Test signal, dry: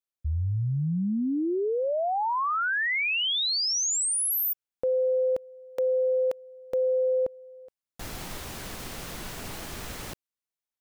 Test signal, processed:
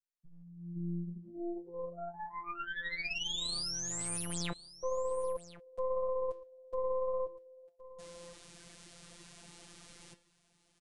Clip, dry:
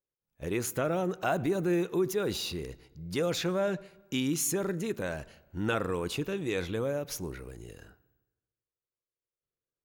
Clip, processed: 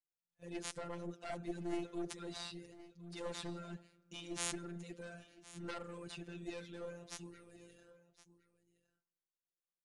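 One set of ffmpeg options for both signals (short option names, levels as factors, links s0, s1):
-filter_complex "[0:a]highpass=49,adynamicequalizer=threshold=0.01:dfrequency=820:dqfactor=1:tfrequency=820:tqfactor=1:attack=5:release=100:ratio=0.375:range=2:mode=cutabove:tftype=bell,flanger=delay=5.7:depth=8.7:regen=-77:speed=1.8:shape=triangular,acrossover=split=5400[s0][s1];[s1]aeval=exprs='max(val(0),0)':c=same[s2];[s0][s2]amix=inputs=2:normalize=0,afftfilt=real='hypot(re,im)*cos(PI*b)':imag='0':win_size=1024:overlap=0.75,crystalizer=i=2:c=0,aeval=exprs='0.316*(cos(1*acos(clip(val(0)/0.316,-1,1)))-cos(1*PI/2))+0.141*(cos(4*acos(clip(val(0)/0.316,-1,1)))-cos(4*PI/2))+0.00794*(cos(8*acos(clip(val(0)/0.316,-1,1)))-cos(8*PI/2))':c=same,aecho=1:1:1066:0.133,aresample=22050,aresample=44100,volume=0.531"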